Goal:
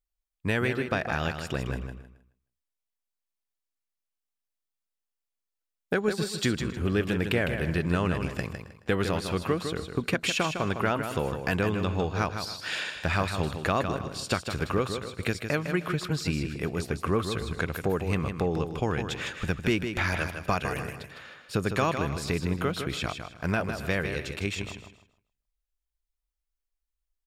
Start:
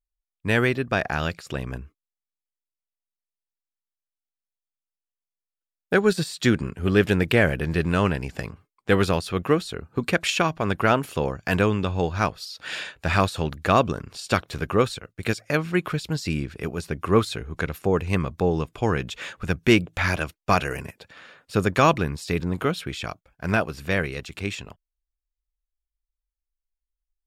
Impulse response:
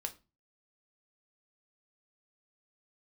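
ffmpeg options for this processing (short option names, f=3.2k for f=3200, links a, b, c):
-filter_complex "[0:a]asplit=2[a][b];[b]aecho=0:1:268:0.075[c];[a][c]amix=inputs=2:normalize=0,acompressor=threshold=-25dB:ratio=3,asplit=2[d][e];[e]aecho=0:1:156|312|468:0.422|0.0928|0.0204[f];[d][f]amix=inputs=2:normalize=0"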